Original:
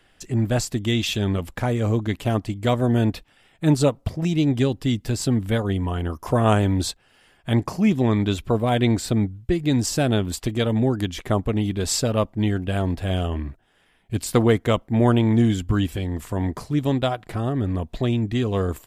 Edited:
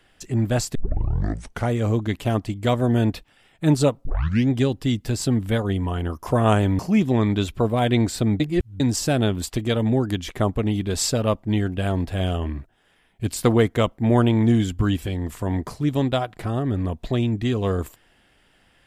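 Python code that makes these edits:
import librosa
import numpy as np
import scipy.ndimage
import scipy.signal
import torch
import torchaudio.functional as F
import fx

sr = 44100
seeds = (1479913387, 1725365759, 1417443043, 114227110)

y = fx.edit(x, sr, fx.tape_start(start_s=0.75, length_s=0.95),
    fx.tape_start(start_s=4.05, length_s=0.45),
    fx.cut(start_s=6.79, length_s=0.9),
    fx.reverse_span(start_s=9.3, length_s=0.4), tone=tone)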